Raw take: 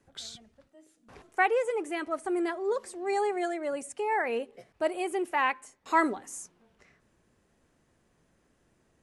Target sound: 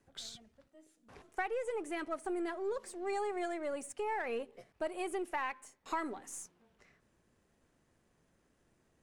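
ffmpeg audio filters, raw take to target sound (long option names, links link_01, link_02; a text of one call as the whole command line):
ffmpeg -i in.wav -af "aeval=exprs='if(lt(val(0),0),0.708*val(0),val(0))':channel_layout=same,acompressor=threshold=-30dB:ratio=6,volume=-3dB" out.wav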